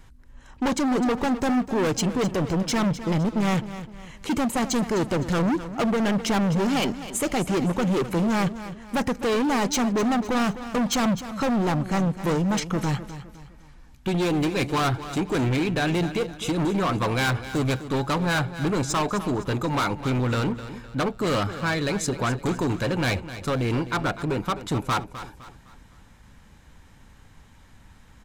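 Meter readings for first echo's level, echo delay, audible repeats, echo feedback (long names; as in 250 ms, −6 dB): −13.0 dB, 256 ms, 3, 38%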